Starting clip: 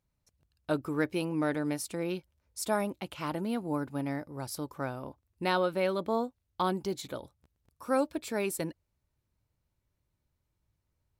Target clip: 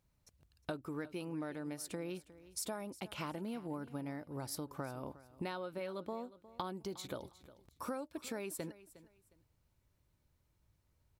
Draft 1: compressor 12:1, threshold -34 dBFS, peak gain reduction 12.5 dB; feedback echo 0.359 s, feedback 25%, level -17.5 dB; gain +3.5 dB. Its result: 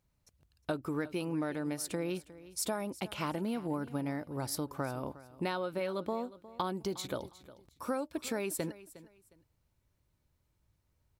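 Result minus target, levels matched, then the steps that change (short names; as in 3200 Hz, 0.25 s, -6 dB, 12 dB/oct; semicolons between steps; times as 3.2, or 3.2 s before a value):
compressor: peak gain reduction -7 dB
change: compressor 12:1, threshold -41.5 dBFS, peak gain reduction 19.5 dB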